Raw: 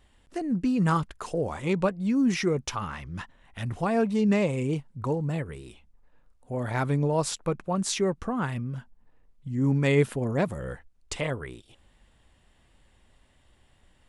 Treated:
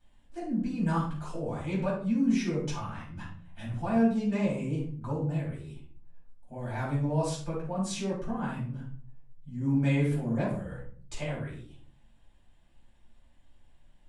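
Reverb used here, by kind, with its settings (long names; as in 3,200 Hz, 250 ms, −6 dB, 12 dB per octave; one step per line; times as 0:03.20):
rectangular room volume 460 cubic metres, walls furnished, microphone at 8 metres
level −17 dB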